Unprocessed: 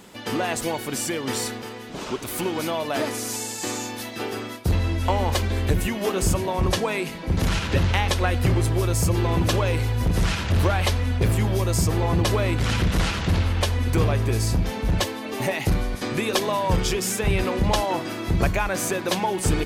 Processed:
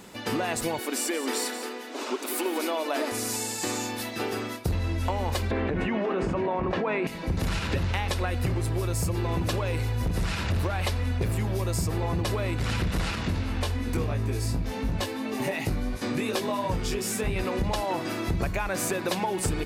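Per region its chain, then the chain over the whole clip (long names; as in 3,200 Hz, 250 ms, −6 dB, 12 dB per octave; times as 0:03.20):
0:00.79–0:03.12: linear-phase brick-wall high-pass 230 Hz + single-tap delay 180 ms −12 dB
0:05.51–0:07.07: low-pass filter 3,500 Hz + three-way crossover with the lows and the highs turned down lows −14 dB, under 160 Hz, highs −13 dB, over 2,600 Hz + envelope flattener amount 100%
0:13.15–0:17.36: parametric band 250 Hz +8 dB 0.26 octaves + chorus effect 2.8 Hz, delay 18 ms, depth 2.8 ms
whole clip: notch filter 3,200 Hz, Q 16; dynamic equaliser 6,200 Hz, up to −4 dB, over −49 dBFS, Q 6.9; downward compressor, threshold −24 dBFS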